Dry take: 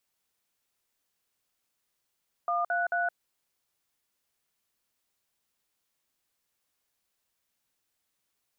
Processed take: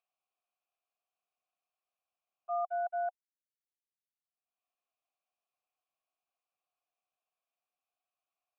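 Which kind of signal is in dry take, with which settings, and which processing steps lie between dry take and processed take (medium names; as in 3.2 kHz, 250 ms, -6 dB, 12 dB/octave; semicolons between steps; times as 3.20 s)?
DTMF "133", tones 168 ms, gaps 52 ms, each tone -28 dBFS
gate -29 dBFS, range -56 dB; upward compressor, threshold -33 dBFS; vowel filter a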